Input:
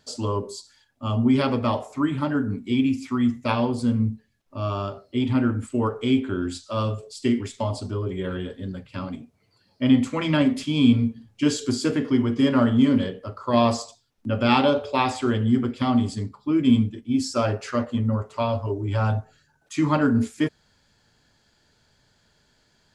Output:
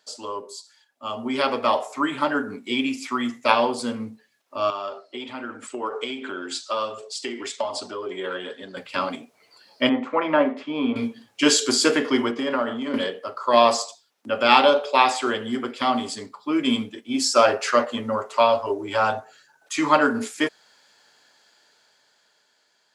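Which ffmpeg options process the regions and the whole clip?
-filter_complex "[0:a]asettb=1/sr,asplit=3[a][b][c];[a]atrim=end=4.704[d];[b]atrim=start=4.7:end=8.77,asetpts=PTS-STARTPTS,afade=t=in:d=0.004:c=qsin,afade=t=out:st=4.066:d=0.004:c=qsin,acompressor=threshold=-27dB:ratio=4:attack=3.2:release=140:knee=1:detection=peak,flanger=delay=0.5:depth=2.7:regen=62:speed=1.3:shape=triangular,highpass=140,lowpass=8k[e];[c]atrim=start=8.766[f];[d][e]acrossfade=d=0.004:c1=hsin:c2=qsin[g];[g][f]acrossfade=d=0.004:c1=qsin:c2=hsin,asettb=1/sr,asplit=3[h][i][j];[h]atrim=end=9.894[k];[i]atrim=start=9.89:end=10.96,asetpts=PTS-STARTPTS,afade=t=in:d=0.004:c=qsin,afade=t=out:st=1.066:d=0.004:c=qsin,lowpass=1.1k,equalizer=f=100:t=o:w=3:g=-10[l];[j]atrim=start=10.956[m];[k][l]acrossfade=d=0.004:c1=hsin:c2=qsin[n];[n][m]acrossfade=d=0.004:c1=qsin:c2=hsin,asettb=1/sr,asplit=3[o][p][q];[o]atrim=end=12.314[r];[p]atrim=start=12.31:end=12.94,asetpts=PTS-STARTPTS,afade=t=in:d=0.004:c=qsin,afade=t=out:st=0.626:d=0.004:c=qsin,highpass=120,highshelf=f=3.4k:g=-10,acompressor=threshold=-22dB:ratio=5:attack=3.2:release=140:knee=1:detection=peak[s];[q]atrim=start=12.936[t];[r][s]acrossfade=d=0.004:c1=hsin:c2=qsin[u];[u][t]acrossfade=d=0.004:c1=qsin:c2=hsin,highpass=530,dynaudnorm=f=450:g=7:m=14dB,volume=-1dB"

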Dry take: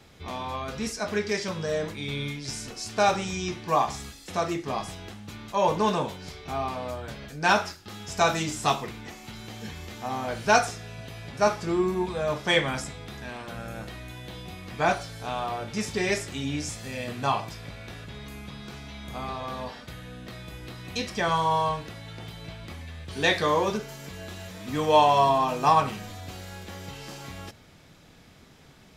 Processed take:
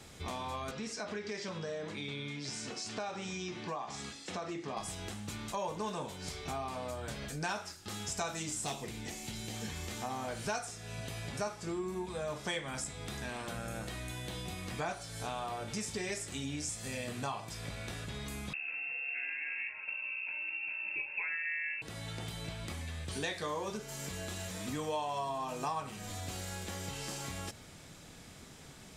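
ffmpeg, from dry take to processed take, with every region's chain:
-filter_complex "[0:a]asettb=1/sr,asplit=3[a][b][c];[a]atrim=end=0.714[d];[b]atrim=start=0.71:end=4.77,asetpts=PTS-STARTPTS,afade=t=in:d=0.004:c=qsin,afade=t=out:st=4.056:d=0.004:c=qsin,acompressor=threshold=-35dB:ratio=2:attack=3.2:release=140:knee=1:detection=peak,highpass=140,lowpass=4.6k[e];[c]atrim=start=4.766[f];[d][e]acrossfade=d=0.004:c1=hsin:c2=qsin[g];[g][f]acrossfade=d=0.004:c1=qsin:c2=hsin,asettb=1/sr,asplit=3[h][i][j];[h]atrim=end=8.644[k];[i]atrim=start=8.64:end=9.54,asetpts=PTS-STARTPTS,afade=t=in:d=0.004:c=qsin,afade=t=out:st=0.896:d=0.004:c=qsin,equalizer=f=1.2k:w=1.7:g=-9.5,volume=22dB,asoftclip=hard,volume=-22dB[l];[j]atrim=start=9.536[m];[k][l]acrossfade=d=0.004:c1=hsin:c2=qsin[n];[n][m]acrossfade=d=0.004:c1=qsin:c2=hsin,asettb=1/sr,asplit=3[o][p][q];[o]atrim=end=18.534[r];[p]atrim=start=18.53:end=21.82,asetpts=PTS-STARTPTS,afade=t=in:d=0.004:c=qsin,afade=t=out:st=3.286:d=0.004:c=qsin,tiltshelf=f=790:g=6.5,lowpass=f=2.4k:t=q:w=0.5098,lowpass=f=2.4k:t=q:w=0.6013,lowpass=f=2.4k:t=q:w=0.9,lowpass=f=2.4k:t=q:w=2.563,afreqshift=-2800,asuperstop=centerf=1200:order=8:qfactor=5.9[s];[q]atrim=start=21.816[t];[r][s]acrossfade=d=0.004:c1=hsin:c2=qsin[u];[u][t]acrossfade=d=0.004:c1=qsin:c2=hsin,equalizer=f=8.4k:w=1.3:g=10.5,acompressor=threshold=-37dB:ratio=4"

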